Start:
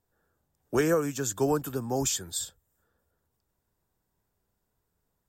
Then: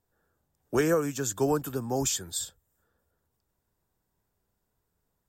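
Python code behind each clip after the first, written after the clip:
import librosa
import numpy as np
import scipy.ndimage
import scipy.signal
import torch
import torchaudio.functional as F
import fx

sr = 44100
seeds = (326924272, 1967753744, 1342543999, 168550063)

y = x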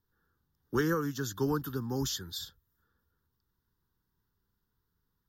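y = fx.fixed_phaser(x, sr, hz=2400.0, stages=6)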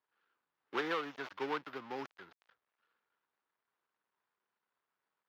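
y = fx.dead_time(x, sr, dead_ms=0.22)
y = scipy.signal.sosfilt(scipy.signal.butter(2, 690.0, 'highpass', fs=sr, output='sos'), y)
y = fx.air_absorb(y, sr, metres=290.0)
y = y * 10.0 ** (3.5 / 20.0)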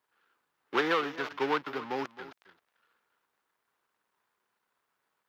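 y = x + 10.0 ** (-16.0 / 20.0) * np.pad(x, (int(266 * sr / 1000.0), 0))[:len(x)]
y = y * 10.0 ** (8.0 / 20.0)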